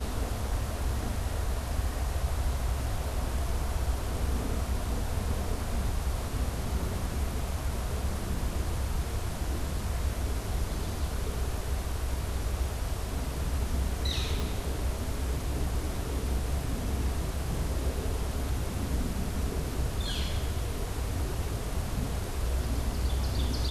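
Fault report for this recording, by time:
0:14.40: click

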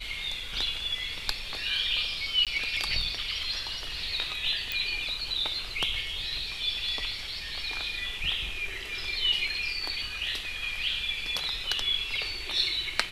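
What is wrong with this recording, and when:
0:02.45–0:02.47: drop-out 17 ms
0:04.72: click −15 dBFS

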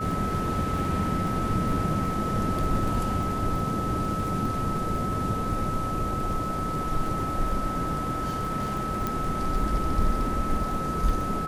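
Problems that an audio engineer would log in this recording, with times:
surface crackle 23 per second −32 dBFS
whistle 1,300 Hz −30 dBFS
0:09.07: click −14 dBFS

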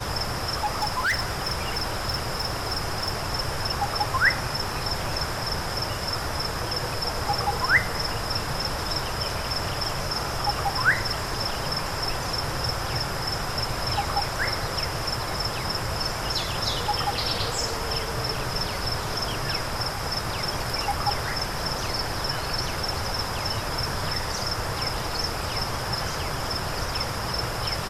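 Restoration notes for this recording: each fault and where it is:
0:00.56–0:03.12: clipping −20.5 dBFS

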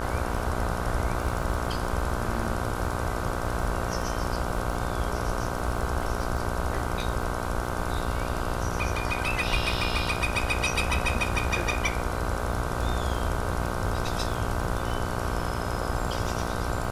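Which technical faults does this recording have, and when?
mains buzz 60 Hz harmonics 26 −32 dBFS
surface crackle 34 per second −35 dBFS

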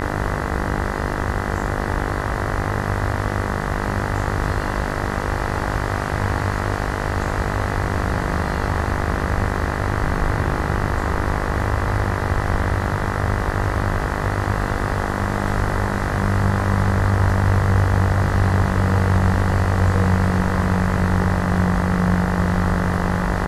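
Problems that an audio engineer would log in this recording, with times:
mains buzz 50 Hz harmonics 40 −25 dBFS

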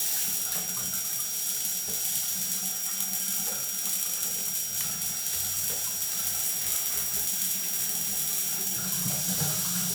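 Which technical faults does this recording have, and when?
whistle 5,700 Hz −34 dBFS

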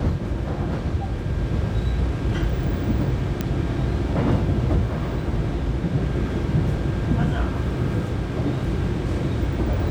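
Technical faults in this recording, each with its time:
0:03.41: click −10 dBFS

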